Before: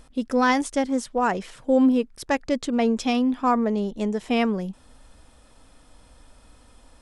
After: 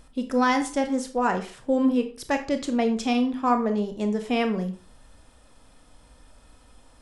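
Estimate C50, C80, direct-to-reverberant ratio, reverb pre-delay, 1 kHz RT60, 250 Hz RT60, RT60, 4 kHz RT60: 11.5 dB, 16.5 dB, 6.5 dB, 22 ms, 0.40 s, 0.40 s, 0.40 s, 0.30 s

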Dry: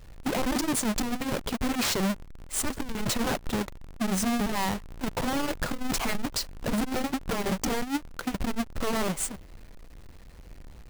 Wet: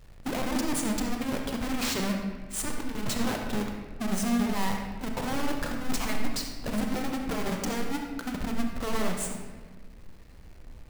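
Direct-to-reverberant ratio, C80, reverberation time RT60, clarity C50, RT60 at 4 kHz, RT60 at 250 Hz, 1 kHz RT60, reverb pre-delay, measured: 2.0 dB, 5.5 dB, 1.4 s, 3.5 dB, 0.95 s, 2.0 s, 1.3 s, 33 ms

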